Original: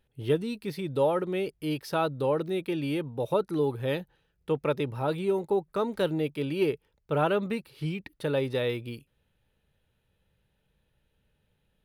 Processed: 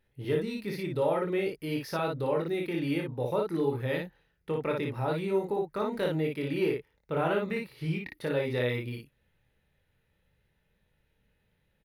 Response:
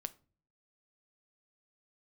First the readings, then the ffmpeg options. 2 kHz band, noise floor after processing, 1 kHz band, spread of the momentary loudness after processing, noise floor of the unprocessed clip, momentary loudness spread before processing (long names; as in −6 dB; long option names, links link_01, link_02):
+1.0 dB, −74 dBFS, −2.5 dB, 6 LU, −75 dBFS, 8 LU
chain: -filter_complex "[0:a]equalizer=frequency=2000:width_type=o:width=0.33:gain=8,equalizer=frequency=3150:width_type=o:width=0.33:gain=-3,equalizer=frequency=8000:width_type=o:width=0.33:gain=-7,asplit=2[link_01][link_02];[link_02]alimiter=limit=-23.5dB:level=0:latency=1,volume=-1dB[link_03];[link_01][link_03]amix=inputs=2:normalize=0,aecho=1:1:24|57:0.562|0.708,volume=-8dB"